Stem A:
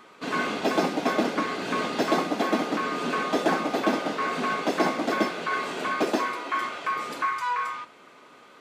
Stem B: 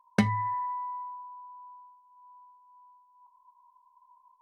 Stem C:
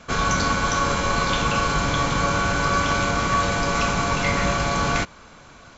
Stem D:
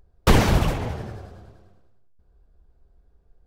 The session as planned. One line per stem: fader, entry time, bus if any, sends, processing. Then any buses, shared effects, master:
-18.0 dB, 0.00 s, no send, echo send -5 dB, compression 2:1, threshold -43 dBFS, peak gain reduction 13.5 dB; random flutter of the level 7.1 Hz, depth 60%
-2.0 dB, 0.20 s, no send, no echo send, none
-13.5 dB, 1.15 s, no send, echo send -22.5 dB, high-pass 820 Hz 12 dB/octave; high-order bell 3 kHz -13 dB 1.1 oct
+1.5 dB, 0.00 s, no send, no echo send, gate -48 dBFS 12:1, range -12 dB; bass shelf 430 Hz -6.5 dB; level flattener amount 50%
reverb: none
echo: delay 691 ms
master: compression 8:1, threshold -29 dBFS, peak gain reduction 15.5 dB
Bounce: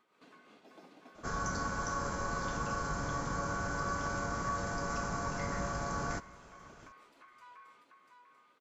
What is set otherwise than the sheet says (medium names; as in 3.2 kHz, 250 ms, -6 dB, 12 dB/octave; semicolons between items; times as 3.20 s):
stem B: muted; stem C: missing high-pass 820 Hz 12 dB/octave; stem D: muted